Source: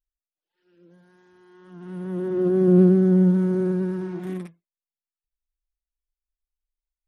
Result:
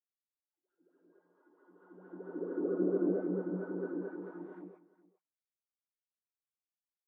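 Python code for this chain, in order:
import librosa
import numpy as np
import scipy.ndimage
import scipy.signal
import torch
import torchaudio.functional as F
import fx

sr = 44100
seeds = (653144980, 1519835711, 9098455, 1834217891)

y = fx.wah_lfo(x, sr, hz=4.5, low_hz=250.0, high_hz=1500.0, q=16.0)
y = y + 10.0 ** (-19.5 / 20.0) * np.pad(y, (int(412 * sr / 1000.0), 0))[:len(y)]
y = fx.rev_gated(y, sr, seeds[0], gate_ms=330, shape='rising', drr_db=-7.5)
y = y * 10.0 ** (-6.0 / 20.0)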